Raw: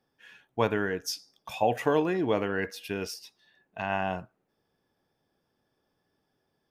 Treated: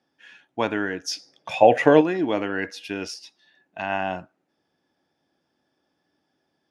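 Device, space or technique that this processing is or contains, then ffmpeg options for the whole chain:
car door speaker: -filter_complex "[0:a]asettb=1/sr,asplit=3[link_01][link_02][link_03];[link_01]atrim=end=1.114[link_04];[link_02]atrim=start=1.11:end=2.01,asetpts=PTS-STARTPTS,afade=type=in:duration=0.004:curve=qsin,afade=type=out:start_time=0.896:duration=0.004:curve=qsin,equalizer=frequency=125:width_type=o:width=1:gain=10,equalizer=frequency=500:width_type=o:width=1:gain=11,equalizer=frequency=2000:width_type=o:width=1:gain=8[link_05];[link_03]atrim=start=2.006[link_06];[link_04][link_05]acrossfade=duration=0.004:curve1=hsin:curve2=qsin[link_07];[link_07][link_06]acrossfade=duration=0.004:curve1=qsin:curve2=hsin,highpass=110,equalizer=frequency=120:width_type=q:width=4:gain=-10,equalizer=frequency=200:width_type=q:width=4:gain=-4,equalizer=frequency=300:width_type=q:width=4:gain=4,equalizer=frequency=440:width_type=q:width=4:gain=-7,equalizer=frequency=1100:width_type=q:width=4:gain=-4,equalizer=frequency=8300:width_type=q:width=4:gain=-6,lowpass=frequency=9200:width=0.5412,lowpass=frequency=9200:width=1.3066,volume=4.5dB"

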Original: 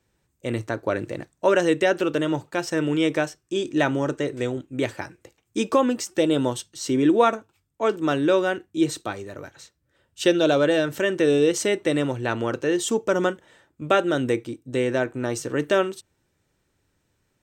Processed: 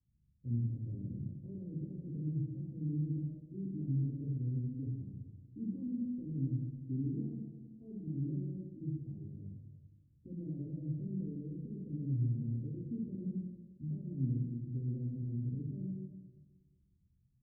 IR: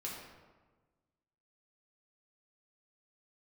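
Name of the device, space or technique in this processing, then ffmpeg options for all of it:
club heard from the street: -filter_complex "[0:a]alimiter=limit=-17.5dB:level=0:latency=1:release=13,lowpass=frequency=180:width=0.5412,lowpass=frequency=180:width=1.3066[link_01];[1:a]atrim=start_sample=2205[link_02];[link_01][link_02]afir=irnorm=-1:irlink=0"

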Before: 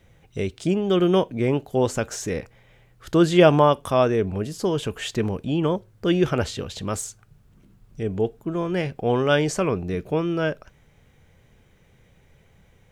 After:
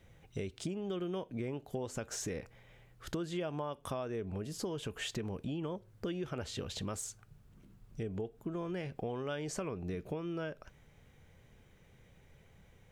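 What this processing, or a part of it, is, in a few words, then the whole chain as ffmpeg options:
serial compression, leveller first: -af "acompressor=threshold=-25dB:ratio=2,acompressor=threshold=-31dB:ratio=4,volume=-5dB"

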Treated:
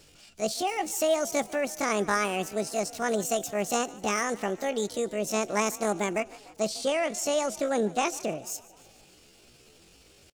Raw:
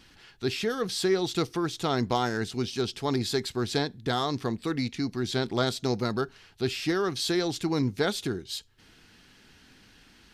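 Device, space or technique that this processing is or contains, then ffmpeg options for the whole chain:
chipmunk voice: -filter_complex "[0:a]asettb=1/sr,asplit=3[link_01][link_02][link_03];[link_01]atrim=end=6.694[link_04];[link_02]atrim=start=6.69:end=8.44,asetpts=PTS-STARTPTS,afade=type=in:duration=0.004:curve=qsin,afade=type=out:start_time=1.746:duration=0.004:curve=qsin,lowpass=5500[link_05];[link_03]atrim=start=8.436[link_06];[link_04][link_05]acrossfade=duration=0.004:curve1=hsin:curve2=qsin[link_07];[link_07][link_06]acrossfade=duration=0.004:curve1=qsin:curve2=hsin,asetrate=74167,aresample=44100,atempo=0.594604,asplit=6[link_08][link_09][link_10][link_11][link_12][link_13];[link_09]adelay=149,afreqshift=37,volume=-21dB[link_14];[link_10]adelay=298,afreqshift=74,volume=-24.9dB[link_15];[link_11]adelay=447,afreqshift=111,volume=-28.8dB[link_16];[link_12]adelay=596,afreqshift=148,volume=-32.6dB[link_17];[link_13]adelay=745,afreqshift=185,volume=-36.5dB[link_18];[link_08][link_14][link_15][link_16][link_17][link_18]amix=inputs=6:normalize=0"

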